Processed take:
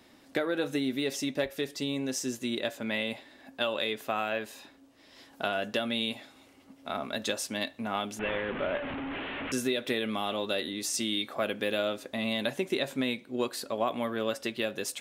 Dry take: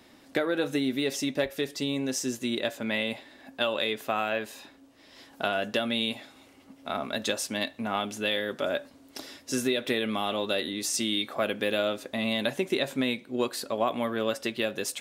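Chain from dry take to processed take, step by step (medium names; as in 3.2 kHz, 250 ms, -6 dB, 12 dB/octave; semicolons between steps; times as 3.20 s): 8.19–9.52 s: one-bit delta coder 16 kbps, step -27 dBFS; trim -2.5 dB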